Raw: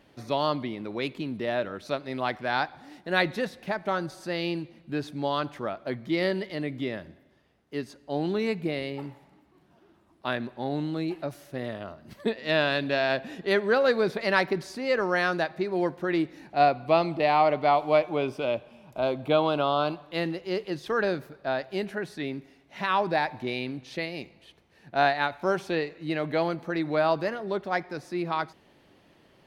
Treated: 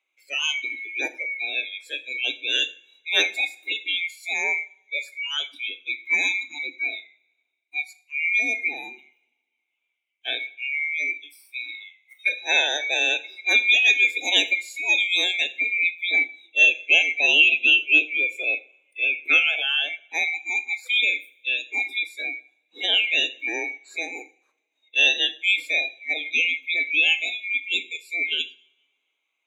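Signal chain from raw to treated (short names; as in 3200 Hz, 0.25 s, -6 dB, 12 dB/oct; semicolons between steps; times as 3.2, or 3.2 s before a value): band-swap scrambler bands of 2000 Hz; spectral noise reduction 24 dB; steep high-pass 270 Hz 48 dB/oct; two-slope reverb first 0.41 s, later 1.8 s, from -27 dB, DRR 10 dB; gain +4.5 dB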